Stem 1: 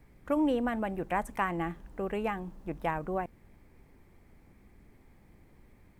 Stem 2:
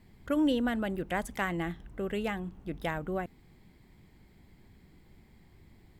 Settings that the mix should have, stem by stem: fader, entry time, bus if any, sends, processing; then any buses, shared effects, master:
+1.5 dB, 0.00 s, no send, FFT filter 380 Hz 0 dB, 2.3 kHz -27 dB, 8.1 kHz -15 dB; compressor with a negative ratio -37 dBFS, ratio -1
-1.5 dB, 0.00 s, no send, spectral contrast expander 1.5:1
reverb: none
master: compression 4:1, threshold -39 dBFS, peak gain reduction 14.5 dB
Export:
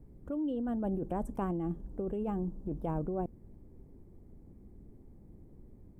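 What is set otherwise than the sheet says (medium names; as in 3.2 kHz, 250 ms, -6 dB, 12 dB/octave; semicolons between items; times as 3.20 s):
stem 2 -1.5 dB -> -13.0 dB; master: missing compression 4:1, threshold -39 dBFS, peak gain reduction 14.5 dB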